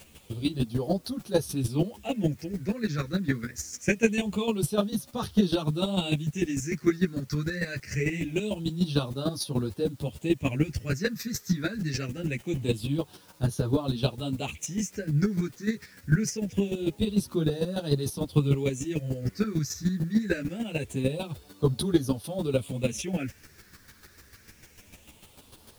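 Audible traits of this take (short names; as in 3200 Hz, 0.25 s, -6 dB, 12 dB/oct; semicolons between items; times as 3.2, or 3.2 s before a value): phasing stages 6, 0.24 Hz, lowest notch 780–2200 Hz; a quantiser's noise floor 10-bit, dither triangular; chopped level 6.7 Hz, depth 65%, duty 15%; a shimmering, thickened sound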